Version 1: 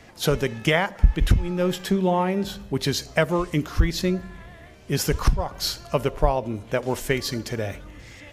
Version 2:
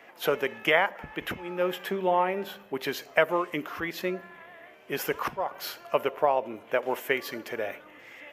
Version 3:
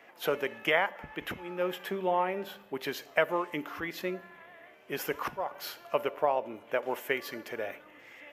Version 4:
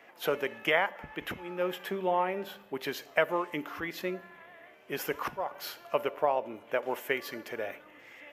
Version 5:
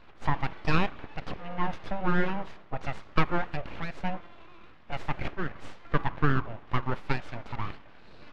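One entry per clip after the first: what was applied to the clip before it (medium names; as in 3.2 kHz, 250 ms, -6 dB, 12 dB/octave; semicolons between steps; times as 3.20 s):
high-pass 450 Hz 12 dB/octave; high-order bell 6.2 kHz -13.5 dB
feedback comb 290 Hz, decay 1.1 s, mix 50%; trim +2 dB
no audible change
full-wave rectifier; tape spacing loss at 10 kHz 30 dB; trim +7 dB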